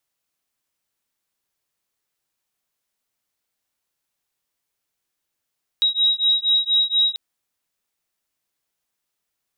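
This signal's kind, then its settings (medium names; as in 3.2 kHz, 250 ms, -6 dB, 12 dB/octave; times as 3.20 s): beating tones 3.82 kHz, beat 4.2 Hz, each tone -19 dBFS 1.34 s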